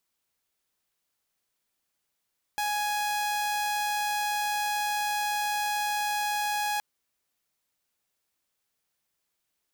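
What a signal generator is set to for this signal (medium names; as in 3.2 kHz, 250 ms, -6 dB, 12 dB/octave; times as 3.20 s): tone saw 833 Hz -24 dBFS 4.22 s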